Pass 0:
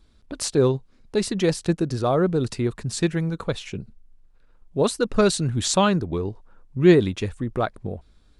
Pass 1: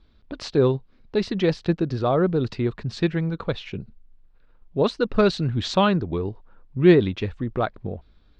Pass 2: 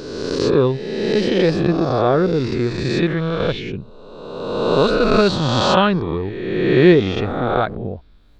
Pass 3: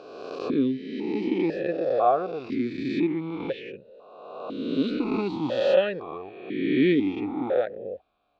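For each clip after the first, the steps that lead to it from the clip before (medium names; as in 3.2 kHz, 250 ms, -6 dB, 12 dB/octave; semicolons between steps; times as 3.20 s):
low-pass 4.4 kHz 24 dB/octave
reverse spectral sustain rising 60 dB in 1.61 s; trim +2 dB
stepped vowel filter 2 Hz; trim +3 dB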